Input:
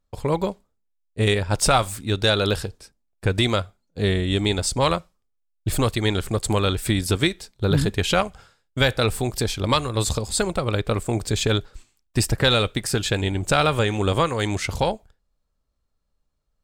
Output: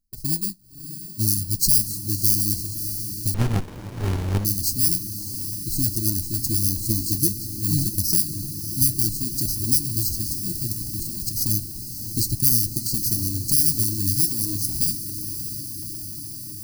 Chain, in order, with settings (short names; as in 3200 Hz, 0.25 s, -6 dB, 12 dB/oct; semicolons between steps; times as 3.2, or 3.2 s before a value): FFT order left unsorted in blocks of 32 samples; high shelf 2500 Hz +6.5 dB; 10.1–11.35 negative-ratio compressor -24 dBFS, ratio -0.5; flange 0.54 Hz, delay 4.2 ms, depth 8.6 ms, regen -47%; brick-wall FIR band-stop 360–3900 Hz; diffused feedback echo 0.624 s, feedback 74%, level -10 dB; 3.34–4.45 running maximum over 65 samples